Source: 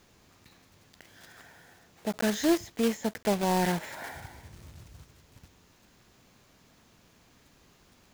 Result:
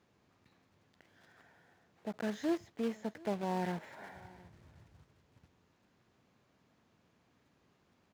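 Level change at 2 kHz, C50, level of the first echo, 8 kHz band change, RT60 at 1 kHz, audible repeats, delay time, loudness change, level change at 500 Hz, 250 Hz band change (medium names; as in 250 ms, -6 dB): -11.0 dB, no reverb, -23.0 dB, -19.5 dB, no reverb, 1, 715 ms, -9.0 dB, -8.5 dB, -8.5 dB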